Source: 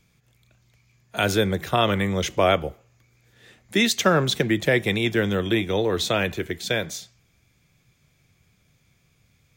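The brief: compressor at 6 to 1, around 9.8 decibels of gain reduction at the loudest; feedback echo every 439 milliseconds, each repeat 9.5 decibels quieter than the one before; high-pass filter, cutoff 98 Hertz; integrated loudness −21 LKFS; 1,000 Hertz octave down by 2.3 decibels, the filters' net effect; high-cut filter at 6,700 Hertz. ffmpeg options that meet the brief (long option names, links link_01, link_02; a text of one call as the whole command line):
ffmpeg -i in.wav -af "highpass=98,lowpass=6700,equalizer=frequency=1000:width_type=o:gain=-3.5,acompressor=threshold=-26dB:ratio=6,aecho=1:1:439|878|1317|1756:0.335|0.111|0.0365|0.012,volume=9.5dB" out.wav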